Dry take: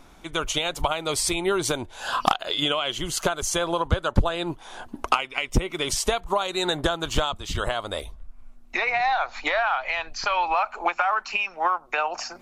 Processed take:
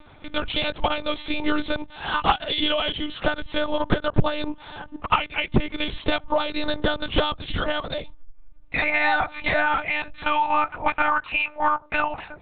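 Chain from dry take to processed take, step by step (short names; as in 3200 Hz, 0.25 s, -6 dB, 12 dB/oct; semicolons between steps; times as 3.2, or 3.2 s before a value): monotone LPC vocoder at 8 kHz 300 Hz; gain +2 dB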